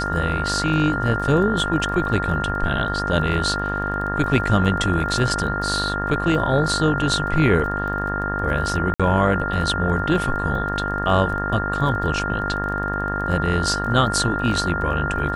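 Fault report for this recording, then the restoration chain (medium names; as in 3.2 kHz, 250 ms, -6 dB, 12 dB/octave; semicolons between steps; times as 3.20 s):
buzz 50 Hz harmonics 37 -27 dBFS
crackle 23 per s -31 dBFS
whine 1.4 kHz -25 dBFS
8.94–9.00 s: dropout 56 ms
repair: de-click; de-hum 50 Hz, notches 37; band-stop 1.4 kHz, Q 30; interpolate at 8.94 s, 56 ms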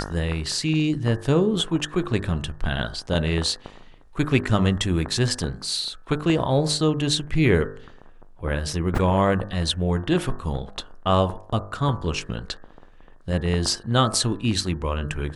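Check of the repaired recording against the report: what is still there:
nothing left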